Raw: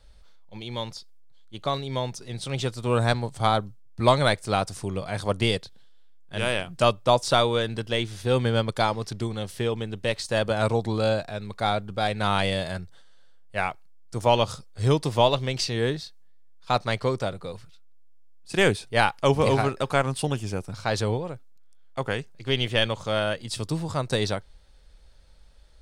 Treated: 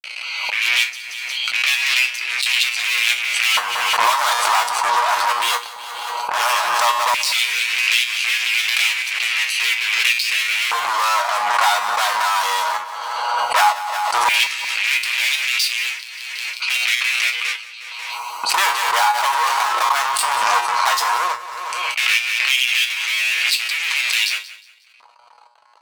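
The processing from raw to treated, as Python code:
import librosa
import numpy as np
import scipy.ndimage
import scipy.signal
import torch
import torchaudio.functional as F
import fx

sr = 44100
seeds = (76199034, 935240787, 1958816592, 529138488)

p1 = fx.wiener(x, sr, points=25)
p2 = p1 + 0.31 * np.pad(p1, (int(6.2 * sr / 1000.0), 0))[:len(p1)]
p3 = fx.fuzz(p2, sr, gain_db=43.0, gate_db=-48.0)
p4 = fx.tilt_shelf(p3, sr, db=-8.5, hz=710.0)
p5 = fx.comb_fb(p4, sr, f0_hz=120.0, decay_s=0.23, harmonics='all', damping=0.0, mix_pct=80)
p6 = fx.fold_sine(p5, sr, drive_db=6, ceiling_db=-3.0)
p7 = fx.filter_lfo_highpass(p6, sr, shape='square', hz=0.14, low_hz=980.0, high_hz=2400.0, q=4.5)
p8 = fx.rider(p7, sr, range_db=5, speed_s=0.5)
p9 = p8 + fx.echo_feedback(p8, sr, ms=180, feedback_pct=29, wet_db=-16.5, dry=0)
p10 = fx.pre_swell(p9, sr, db_per_s=24.0)
y = p10 * librosa.db_to_amplitude(-10.0)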